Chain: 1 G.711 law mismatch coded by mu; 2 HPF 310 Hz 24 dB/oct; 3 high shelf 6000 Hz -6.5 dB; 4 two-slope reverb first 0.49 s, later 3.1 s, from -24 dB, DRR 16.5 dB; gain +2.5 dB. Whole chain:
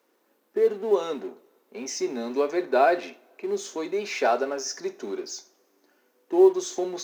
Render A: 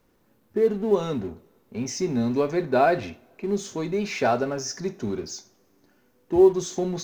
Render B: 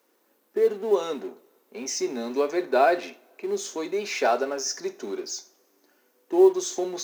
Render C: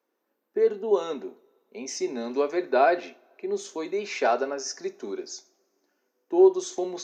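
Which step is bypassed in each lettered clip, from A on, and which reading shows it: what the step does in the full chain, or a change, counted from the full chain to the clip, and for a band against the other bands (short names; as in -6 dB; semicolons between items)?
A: 2, 250 Hz band +3.5 dB; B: 3, 8 kHz band +3.5 dB; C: 1, distortion -23 dB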